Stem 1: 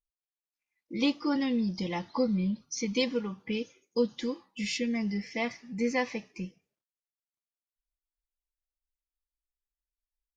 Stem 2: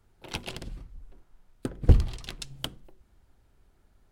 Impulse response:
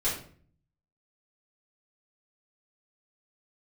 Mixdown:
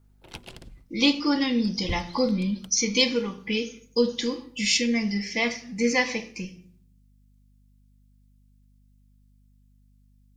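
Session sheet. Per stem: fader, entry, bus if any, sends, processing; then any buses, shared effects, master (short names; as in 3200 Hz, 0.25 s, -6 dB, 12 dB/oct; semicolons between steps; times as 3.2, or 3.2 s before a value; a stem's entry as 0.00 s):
+1.5 dB, 0.00 s, send -14.5 dB, high shelf 2100 Hz +11 dB
-6.0 dB, 0.00 s, no send, auto duck -9 dB, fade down 0.25 s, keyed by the first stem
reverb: on, RT60 0.50 s, pre-delay 4 ms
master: hum 50 Hz, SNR 31 dB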